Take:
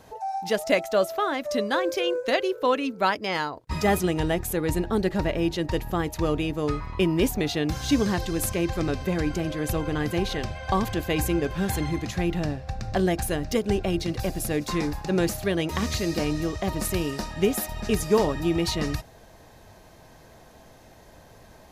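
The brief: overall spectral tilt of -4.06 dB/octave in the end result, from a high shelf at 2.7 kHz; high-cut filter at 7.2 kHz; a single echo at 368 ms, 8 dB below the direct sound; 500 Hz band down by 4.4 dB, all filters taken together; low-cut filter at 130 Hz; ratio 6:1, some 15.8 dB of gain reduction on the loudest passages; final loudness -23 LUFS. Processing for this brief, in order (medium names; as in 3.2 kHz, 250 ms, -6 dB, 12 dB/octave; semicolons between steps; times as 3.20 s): high-pass 130 Hz; low-pass 7.2 kHz; peaking EQ 500 Hz -6 dB; treble shelf 2.7 kHz +5.5 dB; compression 6:1, threshold -36 dBFS; delay 368 ms -8 dB; trim +15.5 dB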